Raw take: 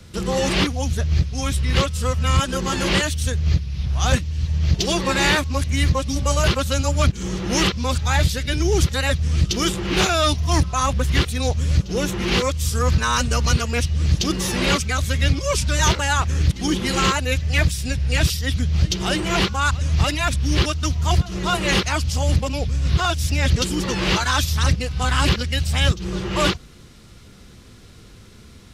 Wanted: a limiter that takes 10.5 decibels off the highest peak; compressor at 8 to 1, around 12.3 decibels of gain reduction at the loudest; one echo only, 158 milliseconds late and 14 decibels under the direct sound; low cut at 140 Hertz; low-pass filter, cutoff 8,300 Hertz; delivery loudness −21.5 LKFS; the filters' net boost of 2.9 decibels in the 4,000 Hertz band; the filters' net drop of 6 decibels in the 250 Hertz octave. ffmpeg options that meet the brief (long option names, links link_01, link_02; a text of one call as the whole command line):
ffmpeg -i in.wav -af "highpass=140,lowpass=8300,equalizer=frequency=250:width_type=o:gain=-8,equalizer=frequency=4000:width_type=o:gain=4,acompressor=threshold=-28dB:ratio=8,alimiter=level_in=0.5dB:limit=-24dB:level=0:latency=1,volume=-0.5dB,aecho=1:1:158:0.2,volume=12dB" out.wav